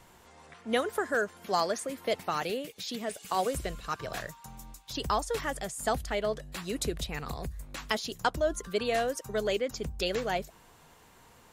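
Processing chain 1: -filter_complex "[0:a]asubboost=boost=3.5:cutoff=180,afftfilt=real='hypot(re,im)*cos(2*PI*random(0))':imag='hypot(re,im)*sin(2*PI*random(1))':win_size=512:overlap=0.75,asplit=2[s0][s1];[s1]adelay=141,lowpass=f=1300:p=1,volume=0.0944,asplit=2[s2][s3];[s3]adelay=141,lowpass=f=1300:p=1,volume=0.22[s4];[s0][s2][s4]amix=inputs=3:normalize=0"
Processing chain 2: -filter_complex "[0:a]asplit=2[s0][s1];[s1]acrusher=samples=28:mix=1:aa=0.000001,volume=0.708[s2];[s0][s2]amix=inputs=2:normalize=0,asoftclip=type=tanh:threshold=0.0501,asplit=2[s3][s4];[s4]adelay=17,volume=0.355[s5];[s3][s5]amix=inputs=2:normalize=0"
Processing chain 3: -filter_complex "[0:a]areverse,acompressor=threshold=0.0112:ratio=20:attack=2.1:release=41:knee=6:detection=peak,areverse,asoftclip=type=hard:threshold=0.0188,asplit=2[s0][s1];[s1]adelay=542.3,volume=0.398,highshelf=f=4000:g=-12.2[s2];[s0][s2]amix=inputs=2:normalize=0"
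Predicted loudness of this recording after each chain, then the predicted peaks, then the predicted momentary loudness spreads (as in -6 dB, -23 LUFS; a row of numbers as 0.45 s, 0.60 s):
-38.5 LUFS, -33.0 LUFS, -43.5 LUFS; -19.5 dBFS, -23.5 dBFS, -32.0 dBFS; 8 LU, 7 LU, 7 LU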